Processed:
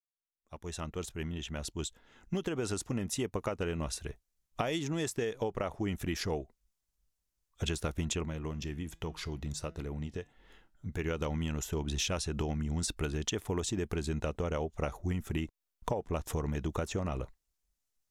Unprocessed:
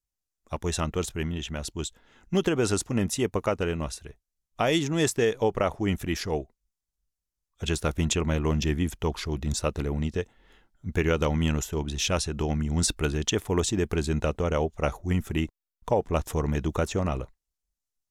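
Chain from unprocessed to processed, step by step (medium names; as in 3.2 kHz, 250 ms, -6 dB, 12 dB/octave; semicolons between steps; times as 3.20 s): fade-in on the opening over 4.03 s; compression 10:1, threshold -33 dBFS, peak gain reduction 15 dB; 8.25–10.99 s: flange 1.3 Hz, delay 5.9 ms, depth 1.3 ms, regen +88%; trim +3 dB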